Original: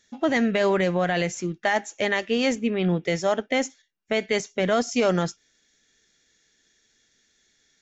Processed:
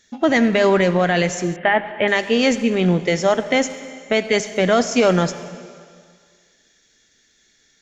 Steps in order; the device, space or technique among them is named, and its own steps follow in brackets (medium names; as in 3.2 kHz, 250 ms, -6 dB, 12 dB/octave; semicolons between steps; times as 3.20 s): saturated reverb return (on a send at -10 dB: reverberation RT60 1.9 s, pre-delay 58 ms + saturation -21.5 dBFS, distortion -13 dB); 1.56–2.08 s: on the sum: steep low-pass 3.2 kHz 48 dB/octave; trim +6 dB